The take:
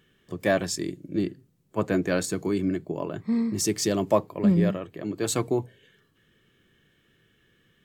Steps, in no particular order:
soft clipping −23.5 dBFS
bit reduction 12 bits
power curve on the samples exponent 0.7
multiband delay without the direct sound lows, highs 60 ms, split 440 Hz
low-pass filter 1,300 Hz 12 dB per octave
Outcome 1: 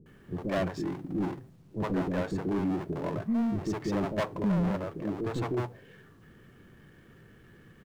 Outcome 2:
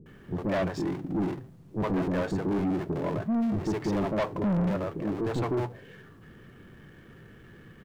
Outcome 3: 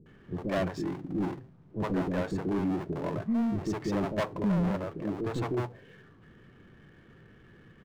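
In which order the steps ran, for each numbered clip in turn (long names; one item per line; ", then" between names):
low-pass filter, then soft clipping, then power curve on the samples, then bit reduction, then multiband delay without the direct sound
low-pass filter, then power curve on the samples, then bit reduction, then multiband delay without the direct sound, then soft clipping
bit reduction, then low-pass filter, then soft clipping, then power curve on the samples, then multiband delay without the direct sound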